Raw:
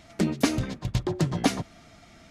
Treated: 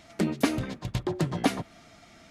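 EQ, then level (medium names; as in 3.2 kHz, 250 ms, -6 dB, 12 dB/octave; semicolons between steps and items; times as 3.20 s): bass shelf 140 Hz -7 dB; dynamic bell 6 kHz, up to -7 dB, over -48 dBFS, Q 1.1; 0.0 dB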